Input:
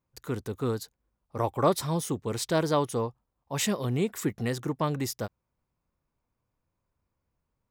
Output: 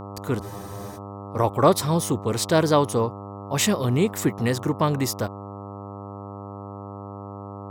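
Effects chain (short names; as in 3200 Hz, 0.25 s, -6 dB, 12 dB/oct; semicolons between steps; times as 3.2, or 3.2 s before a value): buzz 100 Hz, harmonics 13, -43 dBFS -3 dB/oct; spectral freeze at 0.43, 0.53 s; gain +6.5 dB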